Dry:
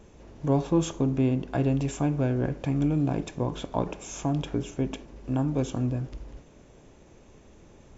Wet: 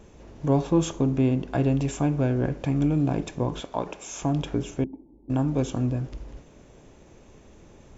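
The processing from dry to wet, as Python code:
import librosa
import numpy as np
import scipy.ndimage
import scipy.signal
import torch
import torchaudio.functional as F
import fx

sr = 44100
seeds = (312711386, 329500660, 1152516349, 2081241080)

y = fx.low_shelf(x, sr, hz=280.0, db=-11.5, at=(3.6, 4.22))
y = fx.formant_cascade(y, sr, vowel='u', at=(4.84, 5.3))
y = F.gain(torch.from_numpy(y), 2.0).numpy()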